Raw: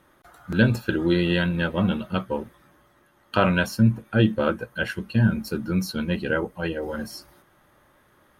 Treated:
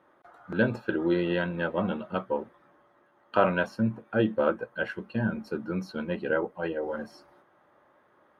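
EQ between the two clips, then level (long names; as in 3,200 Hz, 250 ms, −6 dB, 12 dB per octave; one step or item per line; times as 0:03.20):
resonant band-pass 680 Hz, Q 0.73
0.0 dB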